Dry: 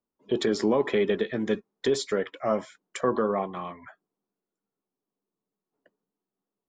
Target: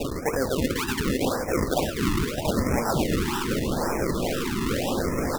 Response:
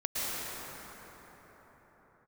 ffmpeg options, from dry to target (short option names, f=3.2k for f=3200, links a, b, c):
-filter_complex "[0:a]aeval=exprs='val(0)+0.5*0.0335*sgn(val(0))':c=same,equalizer=f=1.7k:w=0.33:g=9.5,areverse,acompressor=threshold=-28dB:ratio=16,areverse,asetrate=54684,aresample=44100,acrusher=samples=39:mix=1:aa=0.000001:lfo=1:lforange=39:lforate=2,asplit=2[a][b];[b]aecho=0:1:511|871:0.447|0.133[c];[a][c]amix=inputs=2:normalize=0,afftfilt=real='re*(1-between(b*sr/1024,550*pow(3700/550,0.5+0.5*sin(2*PI*0.82*pts/sr))/1.41,550*pow(3700/550,0.5+0.5*sin(2*PI*0.82*pts/sr))*1.41))':imag='im*(1-between(b*sr/1024,550*pow(3700/550,0.5+0.5*sin(2*PI*0.82*pts/sr))/1.41,550*pow(3700/550,0.5+0.5*sin(2*PI*0.82*pts/sr))*1.41))':win_size=1024:overlap=0.75,volume=7dB"